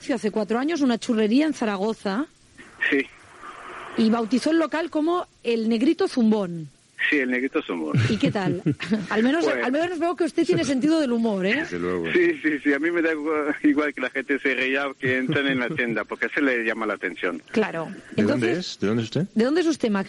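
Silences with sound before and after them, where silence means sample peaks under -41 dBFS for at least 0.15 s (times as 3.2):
2.26–2.58
5.24–5.45
6.68–6.98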